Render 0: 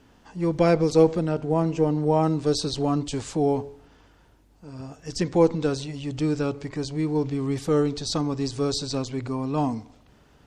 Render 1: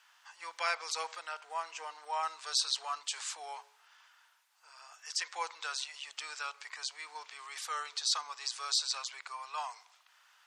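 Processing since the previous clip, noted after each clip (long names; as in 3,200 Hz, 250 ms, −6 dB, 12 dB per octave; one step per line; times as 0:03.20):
inverse Chebyshev high-pass filter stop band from 240 Hz, stop band 70 dB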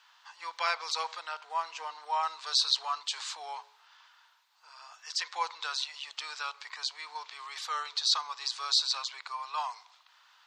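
graphic EQ with 15 bands 1,000 Hz +6 dB, 4,000 Hz +8 dB, 10,000 Hz −10 dB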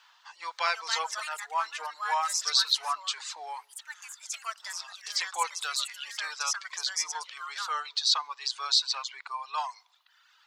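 reverb reduction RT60 1.2 s
delay with pitch and tempo change per echo 433 ms, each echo +5 semitones, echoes 2, each echo −6 dB
level +2.5 dB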